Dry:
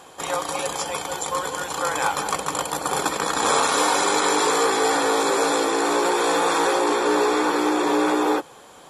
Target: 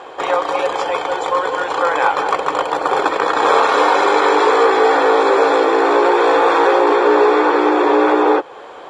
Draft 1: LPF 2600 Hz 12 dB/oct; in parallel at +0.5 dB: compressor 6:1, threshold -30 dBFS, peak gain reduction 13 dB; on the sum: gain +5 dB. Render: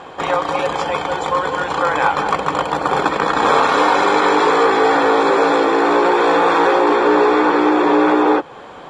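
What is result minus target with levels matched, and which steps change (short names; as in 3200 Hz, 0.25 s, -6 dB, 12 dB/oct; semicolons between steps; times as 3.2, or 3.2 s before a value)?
250 Hz band +3.0 dB
add after LPF: resonant low shelf 280 Hz -10 dB, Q 1.5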